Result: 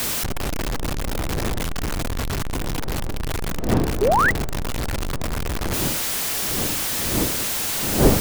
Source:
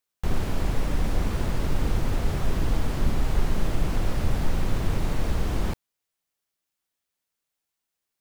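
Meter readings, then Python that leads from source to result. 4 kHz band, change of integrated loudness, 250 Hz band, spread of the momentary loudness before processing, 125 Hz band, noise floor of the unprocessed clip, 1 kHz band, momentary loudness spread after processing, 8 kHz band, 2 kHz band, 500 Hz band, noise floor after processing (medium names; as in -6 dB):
+13.0 dB, +5.5 dB, +6.5 dB, 2 LU, +2.0 dB, -84 dBFS, +11.0 dB, 10 LU, +18.5 dB, +12.5 dB, +10.0 dB, -25 dBFS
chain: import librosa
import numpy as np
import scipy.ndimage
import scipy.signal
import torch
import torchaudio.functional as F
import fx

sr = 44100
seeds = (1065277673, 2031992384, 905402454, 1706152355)

y = np.sign(x) * np.sqrt(np.mean(np.square(x)))
y = fx.dmg_wind(y, sr, seeds[0], corner_hz=360.0, level_db=-27.0)
y = fx.spec_paint(y, sr, seeds[1], shape='rise', start_s=4.01, length_s=0.3, low_hz=370.0, high_hz=2100.0, level_db=-16.0)
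y = y * librosa.db_to_amplitude(-1.0)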